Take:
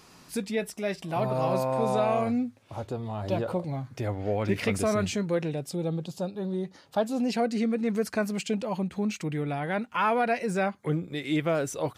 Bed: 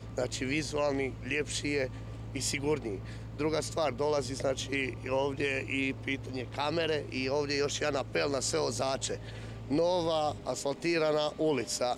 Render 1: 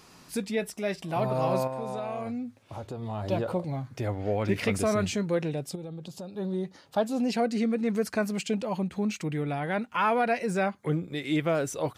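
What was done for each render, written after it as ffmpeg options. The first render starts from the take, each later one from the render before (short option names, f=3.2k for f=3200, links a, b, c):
-filter_complex "[0:a]asettb=1/sr,asplit=3[a][b][c];[a]atrim=end=1.674[d];[b]atrim=start=1.67:end=3.02,asetpts=PTS-STARTPTS,afade=t=in:d=0.004:c=qsin,afade=t=out:st=1.346:d=0.004:c=qsin,acompressor=threshold=-34dB:ratio=2.5:attack=3.2:release=140:knee=1:detection=peak[e];[c]atrim=start=3.016[f];[d][e]acrossfade=d=0.004:c1=hsin:c2=qsin[g];[g][f]acrossfade=d=0.004:c1=qsin:c2=hsin,asettb=1/sr,asplit=3[h][i][j];[h]atrim=end=5.754[k];[i]atrim=start=5.75:end=6.37,asetpts=PTS-STARTPTS,afade=t=in:d=0.004:c=qsin,afade=t=out:st=0.616:d=0.004:c=qsin,acompressor=threshold=-36dB:ratio=6:attack=3.2:release=140:knee=1:detection=peak[l];[j]atrim=start=6.366[m];[k][l]acrossfade=d=0.004:c1=hsin:c2=qsin[n];[n][m]acrossfade=d=0.004:c1=qsin:c2=hsin"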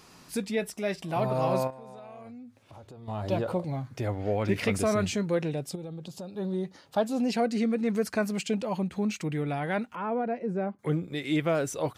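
-filter_complex "[0:a]asettb=1/sr,asplit=3[a][b][c];[a]atrim=end=1.704[d];[b]atrim=start=1.7:end=3.08,asetpts=PTS-STARTPTS,afade=t=in:d=0.004:c=qsin,afade=t=out:st=1.376:d=0.004:c=qsin,acompressor=threshold=-52dB:ratio=2:attack=3.2:release=140:knee=1:detection=peak[e];[c]atrim=start=3.076[f];[d][e]acrossfade=d=0.004:c1=hsin:c2=qsin[g];[g][f]acrossfade=d=0.004:c1=qsin:c2=hsin,asettb=1/sr,asplit=3[h][i][j];[h]atrim=end=9.954[k];[i]atrim=start=9.95:end=10.79,asetpts=PTS-STARTPTS,afade=t=in:d=0.004:c=qsin,afade=t=out:st=0.836:d=0.004:c=qsin,bandpass=f=280:t=q:w=0.79[l];[j]atrim=start=10.786[m];[k][l]acrossfade=d=0.004:c1=hsin:c2=qsin[n];[n][m]acrossfade=d=0.004:c1=qsin:c2=hsin"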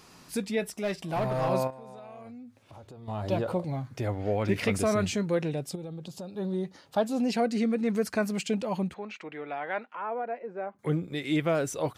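-filter_complex "[0:a]asettb=1/sr,asplit=3[a][b][c];[a]atrim=end=0.754[d];[b]atrim=start=0.75:end=1.49,asetpts=PTS-STARTPTS,afade=t=in:d=0.004:c=qsin,afade=t=out:st=0.736:d=0.004:c=qsin,aeval=exprs='clip(val(0),-1,0.0562)':c=same[e];[c]atrim=start=1.486[f];[d][e]acrossfade=d=0.004:c1=hsin:c2=qsin[g];[g][f]acrossfade=d=0.004:c1=qsin:c2=hsin,asplit=3[h][i][j];[h]afade=t=out:st=8.93:d=0.02[k];[i]highpass=530,lowpass=2.6k,afade=t=in:st=8.93:d=0.02,afade=t=out:st=10.74:d=0.02[l];[j]afade=t=in:st=10.74:d=0.02[m];[k][l][m]amix=inputs=3:normalize=0"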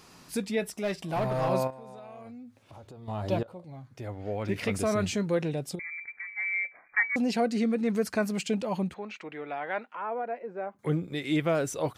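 -filter_complex "[0:a]asettb=1/sr,asplit=3[a][b][c];[a]atrim=end=5.794[d];[b]atrim=start=5.79:end=7.16,asetpts=PTS-STARTPTS,afade=t=in:d=0.004:c=qsin,afade=t=out:st=1.366:d=0.004:c=qsin,lowpass=f=2.1k:t=q:w=0.5098,lowpass=f=2.1k:t=q:w=0.6013,lowpass=f=2.1k:t=q:w=0.9,lowpass=f=2.1k:t=q:w=2.563,afreqshift=-2500[e];[c]atrim=start=7.156[f];[d][e]acrossfade=d=0.004:c1=hsin:c2=qsin[g];[g][f]acrossfade=d=0.004:c1=qsin:c2=hsin,asplit=2[h][i];[h]atrim=end=3.43,asetpts=PTS-STARTPTS,afade=t=out:st=3.426:d=0.004:c=hsin:silence=0.105925[j];[i]atrim=start=3.43,asetpts=PTS-STARTPTS,afade=t=in:d=1.78:silence=0.105925[k];[j][k]concat=n=2:v=0:a=1"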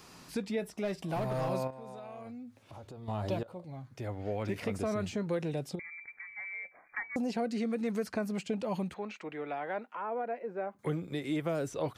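-filter_complex "[0:a]acrossover=split=520|1300|5400[a][b][c][d];[a]acompressor=threshold=-33dB:ratio=4[e];[b]acompressor=threshold=-38dB:ratio=4[f];[c]acompressor=threshold=-48dB:ratio=4[g];[d]acompressor=threshold=-56dB:ratio=4[h];[e][f][g][h]amix=inputs=4:normalize=0"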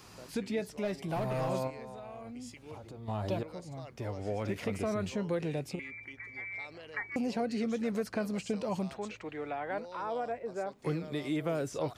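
-filter_complex "[1:a]volume=-19dB[a];[0:a][a]amix=inputs=2:normalize=0"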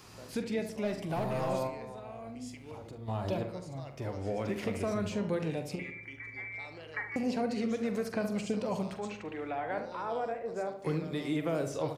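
-filter_complex "[0:a]asplit=2[a][b];[b]adelay=44,volume=-11.5dB[c];[a][c]amix=inputs=2:normalize=0,asplit=2[d][e];[e]adelay=72,lowpass=f=1.8k:p=1,volume=-8dB,asplit=2[f][g];[g]adelay=72,lowpass=f=1.8k:p=1,volume=0.5,asplit=2[h][i];[i]adelay=72,lowpass=f=1.8k:p=1,volume=0.5,asplit=2[j][k];[k]adelay=72,lowpass=f=1.8k:p=1,volume=0.5,asplit=2[l][m];[m]adelay=72,lowpass=f=1.8k:p=1,volume=0.5,asplit=2[n][o];[o]adelay=72,lowpass=f=1.8k:p=1,volume=0.5[p];[f][h][j][l][n][p]amix=inputs=6:normalize=0[q];[d][q]amix=inputs=2:normalize=0"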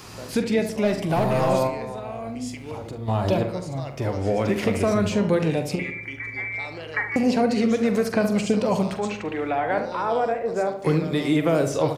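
-af "volume=11.5dB"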